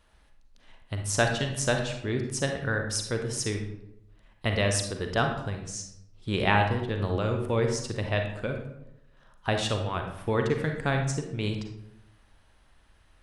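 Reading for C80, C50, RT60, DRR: 8.5 dB, 5.0 dB, 0.80 s, 3.5 dB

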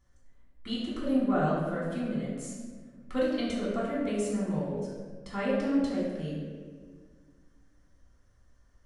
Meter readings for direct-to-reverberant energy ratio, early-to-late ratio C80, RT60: -7.0 dB, 2.0 dB, 1.6 s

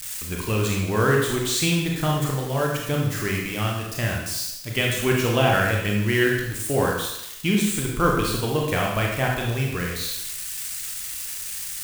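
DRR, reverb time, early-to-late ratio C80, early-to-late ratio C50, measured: -1.5 dB, 0.85 s, 5.0 dB, 2.0 dB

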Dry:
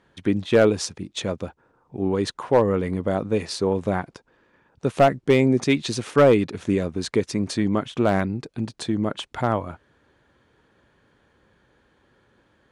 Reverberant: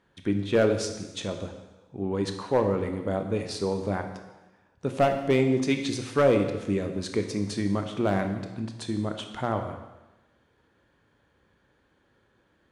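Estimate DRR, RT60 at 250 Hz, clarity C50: 5.5 dB, 1.1 s, 8.0 dB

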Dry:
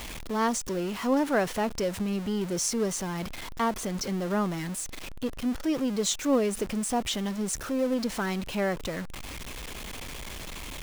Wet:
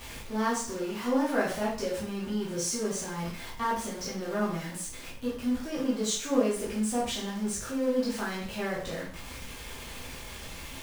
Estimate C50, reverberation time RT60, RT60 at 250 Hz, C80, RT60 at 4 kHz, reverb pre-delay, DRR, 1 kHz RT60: 4.0 dB, 0.50 s, 0.50 s, 9.0 dB, 0.45 s, 5 ms, -7.5 dB, 0.45 s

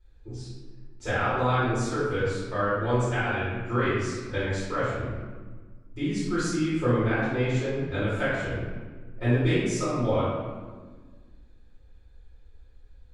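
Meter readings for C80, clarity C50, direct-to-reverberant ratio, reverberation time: 1.0 dB, -2.0 dB, -13.0 dB, 1.5 s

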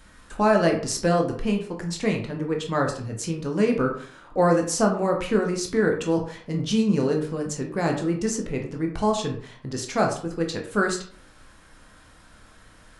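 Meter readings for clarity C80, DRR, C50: 11.5 dB, 1.5 dB, 7.5 dB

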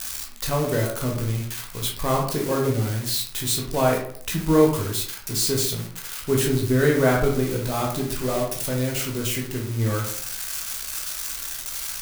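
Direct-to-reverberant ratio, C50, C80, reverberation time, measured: -1.5 dB, 5.0 dB, 9.5 dB, 0.55 s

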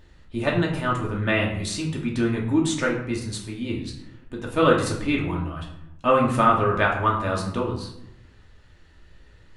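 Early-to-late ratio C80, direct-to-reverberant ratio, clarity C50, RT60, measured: 9.0 dB, -2.5 dB, 6.0 dB, 0.85 s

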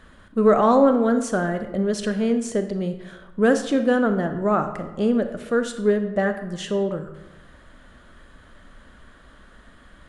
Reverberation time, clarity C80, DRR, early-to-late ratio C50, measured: 1.0 s, 12.0 dB, 8.0 dB, 9.5 dB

